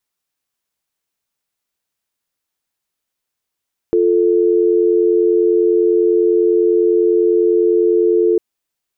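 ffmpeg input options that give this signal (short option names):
-f lavfi -i "aevalsrc='0.224*(sin(2*PI*350*t)+sin(2*PI*440*t))':d=4.45:s=44100"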